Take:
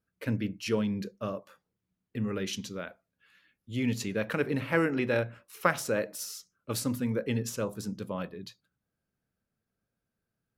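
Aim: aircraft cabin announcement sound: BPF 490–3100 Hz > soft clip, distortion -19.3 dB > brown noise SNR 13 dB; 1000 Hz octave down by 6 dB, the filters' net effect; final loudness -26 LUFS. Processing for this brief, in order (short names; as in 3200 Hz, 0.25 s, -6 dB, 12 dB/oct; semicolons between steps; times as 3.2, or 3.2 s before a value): BPF 490–3100 Hz; bell 1000 Hz -8 dB; soft clip -21 dBFS; brown noise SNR 13 dB; gain +13.5 dB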